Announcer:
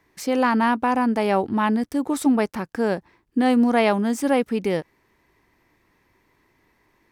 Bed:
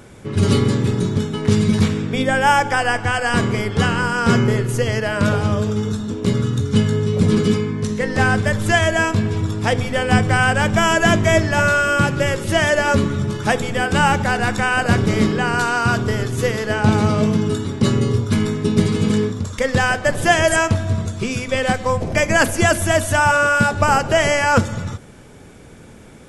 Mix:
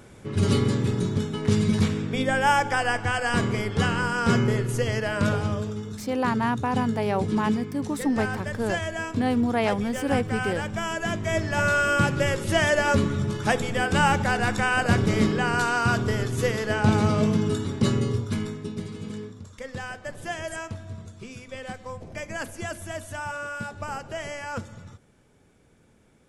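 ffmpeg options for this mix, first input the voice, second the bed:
ffmpeg -i stem1.wav -i stem2.wav -filter_complex "[0:a]adelay=5800,volume=-5.5dB[link_01];[1:a]volume=2.5dB,afade=type=out:start_time=5.27:duration=0.59:silence=0.421697,afade=type=in:start_time=11.19:duration=0.65:silence=0.375837,afade=type=out:start_time=17.76:duration=1.04:silence=0.223872[link_02];[link_01][link_02]amix=inputs=2:normalize=0" out.wav

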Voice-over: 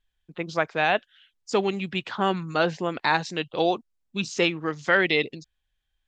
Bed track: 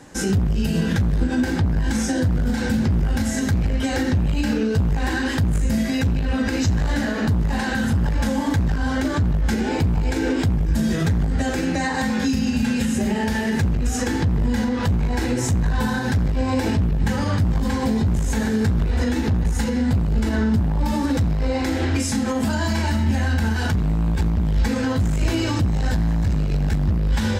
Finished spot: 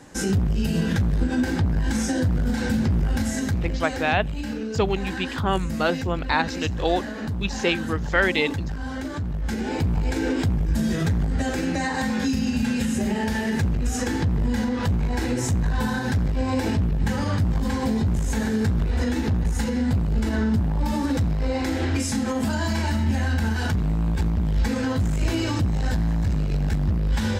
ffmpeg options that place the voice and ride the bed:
ffmpeg -i stem1.wav -i stem2.wav -filter_complex "[0:a]adelay=3250,volume=0dB[link_01];[1:a]volume=4dB,afade=type=out:start_time=3.17:duration=0.88:silence=0.473151,afade=type=in:start_time=9.28:duration=0.68:silence=0.501187[link_02];[link_01][link_02]amix=inputs=2:normalize=0" out.wav

